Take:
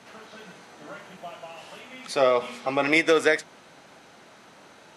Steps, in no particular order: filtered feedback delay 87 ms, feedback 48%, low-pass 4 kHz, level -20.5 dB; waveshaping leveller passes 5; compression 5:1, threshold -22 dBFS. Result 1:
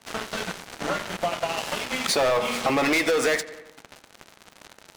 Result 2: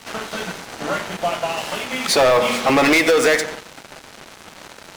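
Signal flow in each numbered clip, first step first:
waveshaping leveller > filtered feedback delay > compression; filtered feedback delay > compression > waveshaping leveller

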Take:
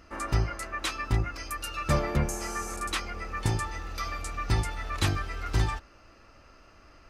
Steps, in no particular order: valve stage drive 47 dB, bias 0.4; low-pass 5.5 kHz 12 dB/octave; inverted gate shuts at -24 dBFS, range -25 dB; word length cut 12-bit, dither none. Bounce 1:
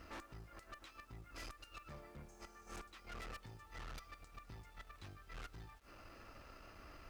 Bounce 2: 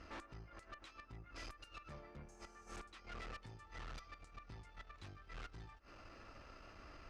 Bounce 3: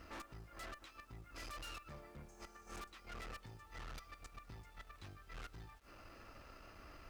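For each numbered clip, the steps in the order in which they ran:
inverted gate > low-pass > valve stage > word length cut; word length cut > inverted gate > valve stage > low-pass; low-pass > inverted gate > valve stage > word length cut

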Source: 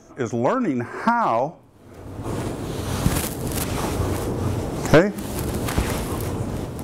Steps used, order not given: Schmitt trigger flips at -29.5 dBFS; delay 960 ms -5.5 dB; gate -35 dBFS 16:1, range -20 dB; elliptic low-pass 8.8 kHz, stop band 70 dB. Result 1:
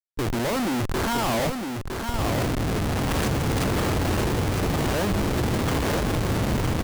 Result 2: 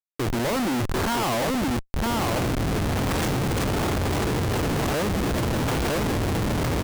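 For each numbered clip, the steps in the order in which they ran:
elliptic low-pass > Schmitt trigger > delay > gate; delay > gate > elliptic low-pass > Schmitt trigger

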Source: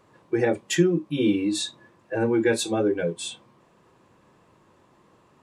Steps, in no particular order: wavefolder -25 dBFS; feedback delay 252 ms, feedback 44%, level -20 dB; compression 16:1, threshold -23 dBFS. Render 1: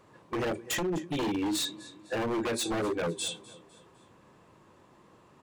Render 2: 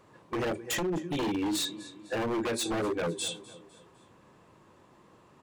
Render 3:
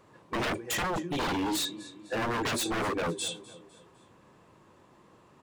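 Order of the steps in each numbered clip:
compression > feedback delay > wavefolder; feedback delay > compression > wavefolder; feedback delay > wavefolder > compression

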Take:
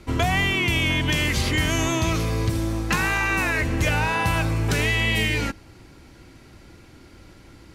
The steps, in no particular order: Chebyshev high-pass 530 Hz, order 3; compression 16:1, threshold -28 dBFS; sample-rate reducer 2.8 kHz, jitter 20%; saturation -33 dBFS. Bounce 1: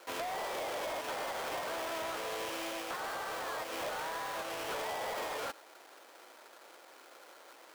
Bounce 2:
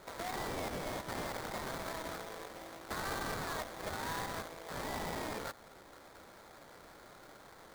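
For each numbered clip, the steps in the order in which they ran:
sample-rate reducer > Chebyshev high-pass > compression > saturation; compression > saturation > Chebyshev high-pass > sample-rate reducer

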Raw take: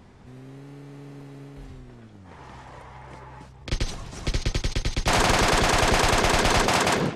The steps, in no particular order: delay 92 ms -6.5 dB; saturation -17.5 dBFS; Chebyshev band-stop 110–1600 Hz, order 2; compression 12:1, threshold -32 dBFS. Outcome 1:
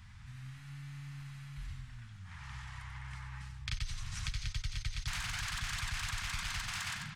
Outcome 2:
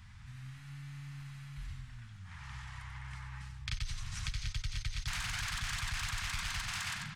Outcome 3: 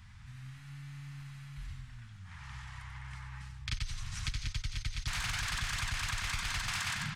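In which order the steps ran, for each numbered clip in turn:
saturation > delay > compression > Chebyshev band-stop; delay > saturation > compression > Chebyshev band-stop; Chebyshev band-stop > saturation > delay > compression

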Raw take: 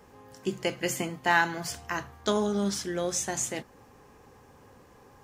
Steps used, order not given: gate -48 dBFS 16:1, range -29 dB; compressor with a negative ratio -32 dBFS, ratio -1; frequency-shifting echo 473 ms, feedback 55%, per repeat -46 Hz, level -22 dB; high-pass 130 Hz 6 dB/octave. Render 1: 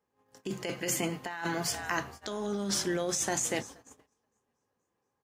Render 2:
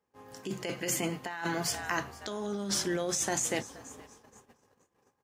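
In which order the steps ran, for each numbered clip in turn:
frequency-shifting echo > high-pass > gate > compressor with a negative ratio; frequency-shifting echo > compressor with a negative ratio > high-pass > gate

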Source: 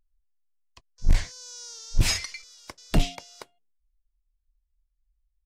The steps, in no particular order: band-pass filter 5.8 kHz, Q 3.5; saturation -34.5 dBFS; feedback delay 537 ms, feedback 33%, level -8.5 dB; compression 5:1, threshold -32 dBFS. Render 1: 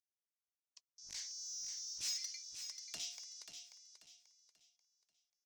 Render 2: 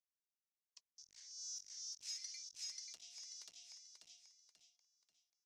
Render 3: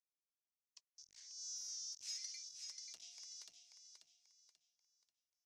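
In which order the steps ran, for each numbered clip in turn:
band-pass filter > compression > saturation > feedback delay; feedback delay > compression > saturation > band-pass filter; compression > feedback delay > saturation > band-pass filter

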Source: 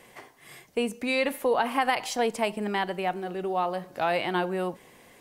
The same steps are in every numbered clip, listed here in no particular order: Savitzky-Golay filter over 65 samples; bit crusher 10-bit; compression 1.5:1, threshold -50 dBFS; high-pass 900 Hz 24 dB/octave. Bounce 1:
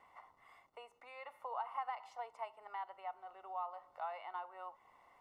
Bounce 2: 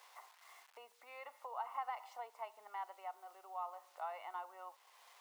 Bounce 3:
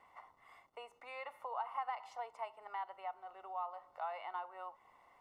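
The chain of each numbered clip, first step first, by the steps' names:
high-pass > bit crusher > compression > Savitzky-Golay filter; Savitzky-Golay filter > bit crusher > compression > high-pass; high-pass > bit crusher > Savitzky-Golay filter > compression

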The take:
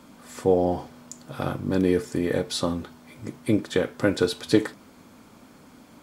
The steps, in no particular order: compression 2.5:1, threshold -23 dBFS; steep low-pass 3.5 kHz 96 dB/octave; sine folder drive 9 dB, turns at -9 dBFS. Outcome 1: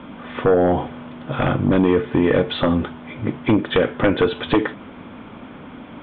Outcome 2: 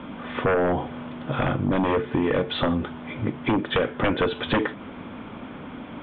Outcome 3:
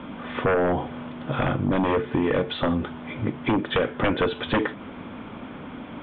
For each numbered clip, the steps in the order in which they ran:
compression > sine folder > steep low-pass; sine folder > steep low-pass > compression; sine folder > compression > steep low-pass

